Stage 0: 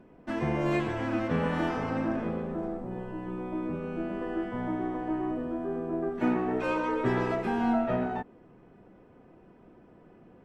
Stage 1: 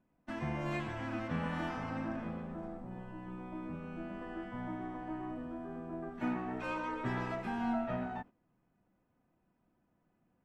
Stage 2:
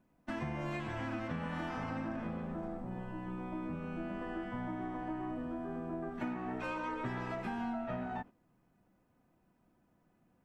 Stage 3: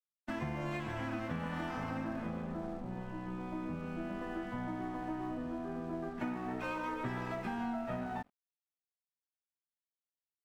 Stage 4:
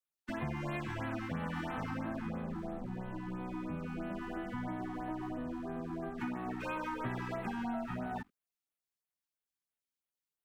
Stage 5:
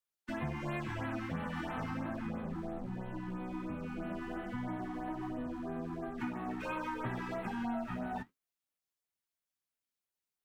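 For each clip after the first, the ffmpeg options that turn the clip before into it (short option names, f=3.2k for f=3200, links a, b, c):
-af "agate=range=-12dB:threshold=-42dB:ratio=16:detection=peak,equalizer=f=420:t=o:w=0.69:g=-11,volume=-6dB"
-af "acompressor=threshold=-39dB:ratio=6,volume=4dB"
-af "aeval=exprs='sgn(val(0))*max(abs(val(0))-0.00106,0)':c=same,volume=1dB"
-filter_complex "[0:a]acrossover=split=300|410|2600[a][b][c][d];[b]alimiter=level_in=25dB:limit=-24dB:level=0:latency=1,volume=-25dB[e];[a][e][c][d]amix=inputs=4:normalize=0,afftfilt=real='re*(1-between(b*sr/1024,490*pow(6300/490,0.5+0.5*sin(2*PI*3*pts/sr))/1.41,490*pow(6300/490,0.5+0.5*sin(2*PI*3*pts/sr))*1.41))':imag='im*(1-between(b*sr/1024,490*pow(6300/490,0.5+0.5*sin(2*PI*3*pts/sr))/1.41,490*pow(6300/490,0.5+0.5*sin(2*PI*3*pts/sr))*1.41))':win_size=1024:overlap=0.75,volume=1dB"
-af "flanger=delay=8.4:depth=4.2:regen=-55:speed=1.3:shape=sinusoidal,volume=4dB"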